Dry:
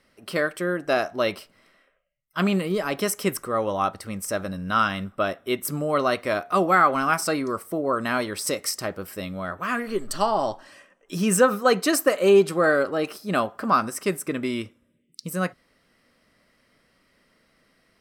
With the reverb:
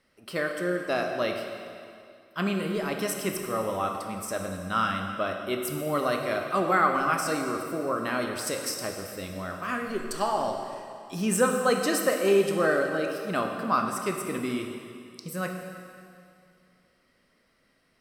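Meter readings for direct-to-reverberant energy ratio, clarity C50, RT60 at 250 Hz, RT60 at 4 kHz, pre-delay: 3.0 dB, 4.5 dB, 2.5 s, 2.2 s, 7 ms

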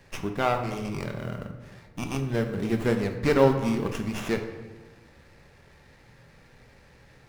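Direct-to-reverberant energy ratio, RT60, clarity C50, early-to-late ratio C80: 5.0 dB, 1.2 s, 8.0 dB, 10.0 dB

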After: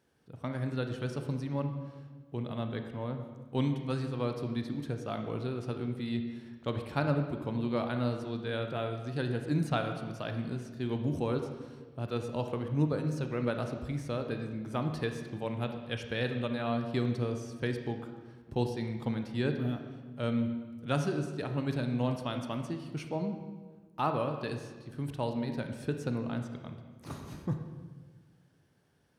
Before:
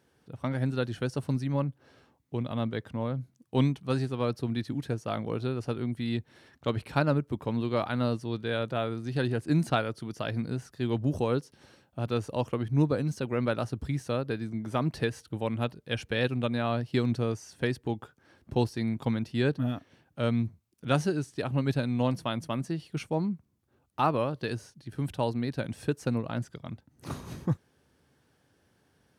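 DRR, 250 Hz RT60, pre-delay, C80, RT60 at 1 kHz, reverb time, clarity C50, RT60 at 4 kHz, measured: 5.5 dB, 1.8 s, 28 ms, 8.0 dB, 1.3 s, 1.4 s, 7.0 dB, 1.1 s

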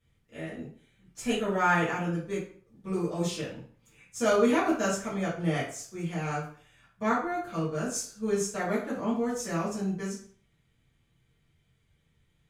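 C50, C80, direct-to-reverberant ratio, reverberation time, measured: 4.5 dB, 9.5 dB, -11.0 dB, 0.50 s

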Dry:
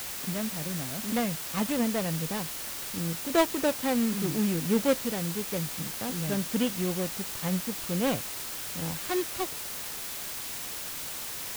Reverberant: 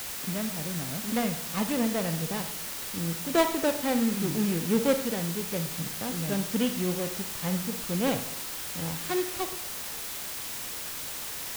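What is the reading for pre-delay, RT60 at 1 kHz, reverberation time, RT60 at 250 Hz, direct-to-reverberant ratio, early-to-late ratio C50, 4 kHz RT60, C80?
32 ms, 0.70 s, 0.70 s, 0.70 s, 7.5 dB, 9.5 dB, 0.45 s, 13.0 dB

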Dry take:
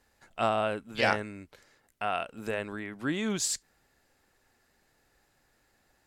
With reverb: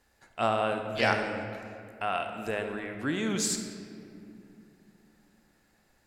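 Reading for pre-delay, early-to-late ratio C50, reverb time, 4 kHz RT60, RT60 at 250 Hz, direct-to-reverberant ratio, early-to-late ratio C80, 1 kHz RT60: 30 ms, 5.5 dB, 2.6 s, 1.4 s, 3.8 s, 5.0 dB, 6.5 dB, 2.2 s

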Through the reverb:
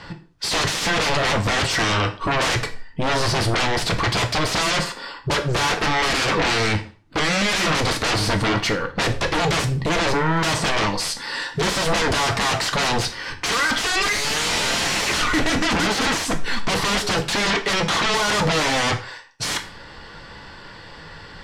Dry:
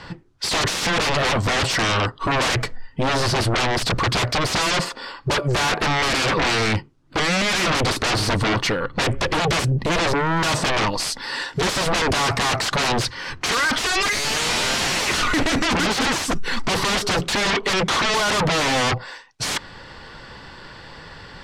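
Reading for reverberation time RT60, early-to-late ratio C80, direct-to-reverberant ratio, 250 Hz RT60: 0.40 s, 18.0 dB, 6.0 dB, 0.40 s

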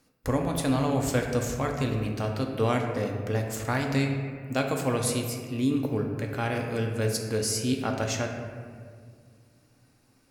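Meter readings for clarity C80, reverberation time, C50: 6.0 dB, 2.0 s, 4.0 dB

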